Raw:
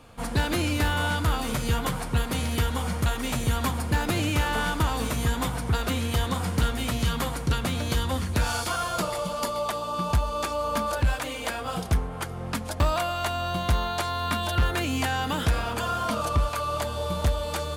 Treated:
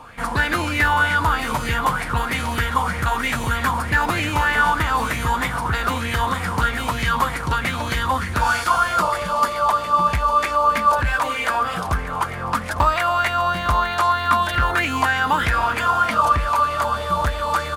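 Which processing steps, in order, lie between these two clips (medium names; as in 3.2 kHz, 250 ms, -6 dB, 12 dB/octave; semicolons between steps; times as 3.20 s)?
in parallel at -2 dB: peak limiter -27 dBFS, peak gain reduction 11 dB; on the sum: feedback delay 853 ms, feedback 54%, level -15 dB; sweeping bell 3.2 Hz 930–2100 Hz +18 dB; trim -2 dB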